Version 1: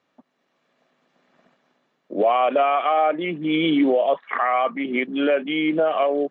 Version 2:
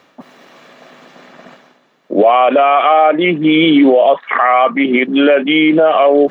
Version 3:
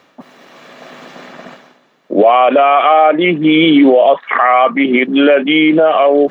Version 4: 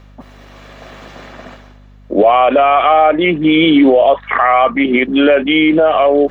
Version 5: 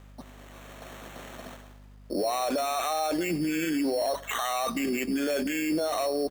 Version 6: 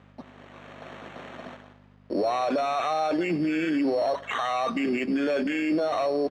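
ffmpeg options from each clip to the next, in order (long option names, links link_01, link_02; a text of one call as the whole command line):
ffmpeg -i in.wav -af "lowshelf=frequency=170:gain=-4,areverse,acompressor=mode=upward:threshold=-42dB:ratio=2.5,areverse,alimiter=level_in=15dB:limit=-1dB:release=50:level=0:latency=1,volume=-1dB" out.wav
ffmpeg -i in.wav -af "dynaudnorm=framelen=160:gausssize=9:maxgain=7dB" out.wav
ffmpeg -i in.wav -af "aeval=exprs='val(0)+0.0112*(sin(2*PI*50*n/s)+sin(2*PI*2*50*n/s)/2+sin(2*PI*3*50*n/s)/3+sin(2*PI*4*50*n/s)/4+sin(2*PI*5*50*n/s)/5)':channel_layout=same,volume=-1dB" out.wav
ffmpeg -i in.wav -af "alimiter=limit=-12.5dB:level=0:latency=1:release=16,acrusher=samples=9:mix=1:aa=0.000001,aecho=1:1:97|194|291|388:0.0891|0.0472|0.025|0.0133,volume=-9dB" out.wav
ffmpeg -i in.wav -filter_complex "[0:a]asplit=2[link_01][link_02];[link_02]acrusher=bits=4:dc=4:mix=0:aa=0.000001,volume=-10.5dB[link_03];[link_01][link_03]amix=inputs=2:normalize=0,highpass=110,lowpass=3100,volume=1.5dB" out.wav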